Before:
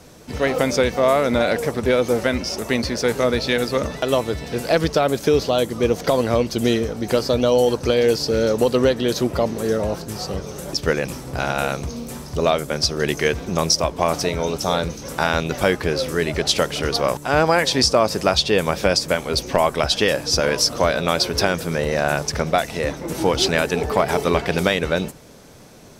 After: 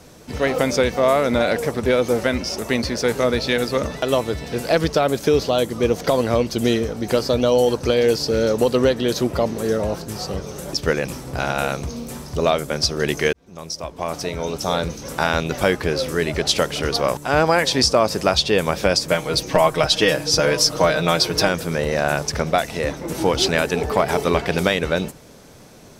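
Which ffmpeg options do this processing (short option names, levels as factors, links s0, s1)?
-filter_complex "[0:a]asettb=1/sr,asplit=3[s0][s1][s2];[s0]atrim=end=19.114[s3];[s1]atrim=start=19.11:end=21.49,asetpts=PTS-STARTPTS,afade=t=in:d=0.004:c=qsin,afade=t=out:st=2.376:d=0.004:c=qsin,aecho=1:1:6.4:0.65,atrim=end_sample=104958[s4];[s2]atrim=start=21.486[s5];[s3][s4]acrossfade=d=0.004:c1=hsin:c2=qsin[s6];[s6][s5]acrossfade=d=0.004:c1=qsin:c2=hsin,asplit=2[s7][s8];[s7]atrim=end=13.33,asetpts=PTS-STARTPTS,afade=t=out:st=13.326:d=0.004:c=hsin[s9];[s8]atrim=start=13.33,asetpts=PTS-STARTPTS,afade=t=in:d=1.54[s10];[s9][s10]concat=n=2:v=0:a=1"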